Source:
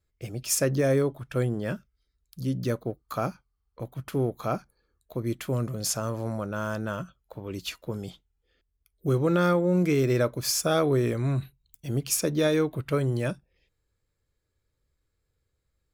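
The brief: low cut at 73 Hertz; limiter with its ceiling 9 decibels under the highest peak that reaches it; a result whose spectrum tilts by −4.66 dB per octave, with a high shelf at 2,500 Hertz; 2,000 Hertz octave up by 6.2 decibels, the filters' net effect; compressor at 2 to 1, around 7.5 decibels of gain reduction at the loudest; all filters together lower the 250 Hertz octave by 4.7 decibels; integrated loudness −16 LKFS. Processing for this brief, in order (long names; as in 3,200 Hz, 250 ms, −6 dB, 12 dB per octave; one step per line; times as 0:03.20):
high-pass filter 73 Hz
parametric band 250 Hz −7.5 dB
parametric band 2,000 Hz +5.5 dB
high-shelf EQ 2,500 Hz +6.5 dB
downward compressor 2 to 1, threshold −30 dBFS
level +18 dB
brickwall limiter −4 dBFS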